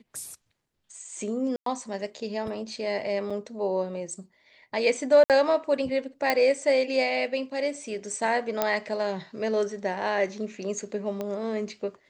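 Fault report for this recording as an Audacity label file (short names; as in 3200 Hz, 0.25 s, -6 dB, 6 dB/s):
1.560000	1.660000	gap 0.103 s
3.300000	3.310000	gap 5 ms
5.240000	5.300000	gap 58 ms
6.300000	6.300000	pop -9 dBFS
8.620000	8.620000	pop -9 dBFS
11.210000	11.210000	pop -19 dBFS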